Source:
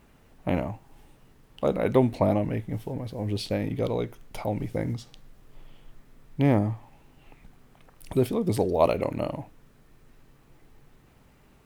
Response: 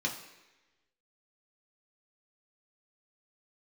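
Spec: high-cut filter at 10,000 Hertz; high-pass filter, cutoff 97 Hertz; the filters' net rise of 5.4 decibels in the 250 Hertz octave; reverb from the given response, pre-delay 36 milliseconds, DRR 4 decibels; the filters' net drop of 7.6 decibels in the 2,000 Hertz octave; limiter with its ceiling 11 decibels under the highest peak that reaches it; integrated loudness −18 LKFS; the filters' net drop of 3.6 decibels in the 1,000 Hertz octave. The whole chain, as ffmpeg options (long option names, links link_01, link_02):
-filter_complex "[0:a]highpass=97,lowpass=10000,equalizer=frequency=250:width_type=o:gain=7,equalizer=frequency=1000:width_type=o:gain=-4,equalizer=frequency=2000:width_type=o:gain=-8.5,alimiter=limit=-15.5dB:level=0:latency=1,asplit=2[link_01][link_02];[1:a]atrim=start_sample=2205,adelay=36[link_03];[link_02][link_03]afir=irnorm=-1:irlink=0,volume=-9.5dB[link_04];[link_01][link_04]amix=inputs=2:normalize=0,volume=9dB"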